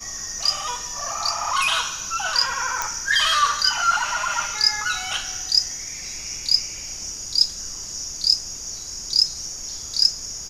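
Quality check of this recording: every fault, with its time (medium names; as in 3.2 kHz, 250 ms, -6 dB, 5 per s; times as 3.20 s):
2.82 s: pop -8 dBFS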